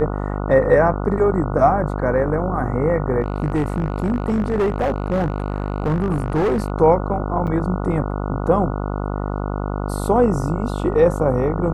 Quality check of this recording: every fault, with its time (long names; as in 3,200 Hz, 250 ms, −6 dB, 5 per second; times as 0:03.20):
mains buzz 50 Hz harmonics 29 −24 dBFS
0:03.21–0:06.70: clipping −15 dBFS
0:07.47–0:07.48: drop-out 6.4 ms